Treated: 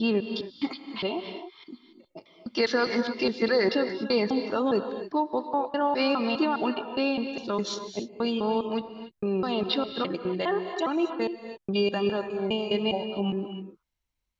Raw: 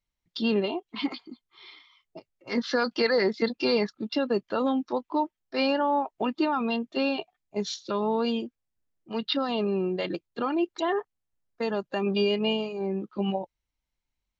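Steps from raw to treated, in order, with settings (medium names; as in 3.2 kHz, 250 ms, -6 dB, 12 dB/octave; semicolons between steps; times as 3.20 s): slices played last to first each 205 ms, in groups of 3; gated-style reverb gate 310 ms rising, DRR 8 dB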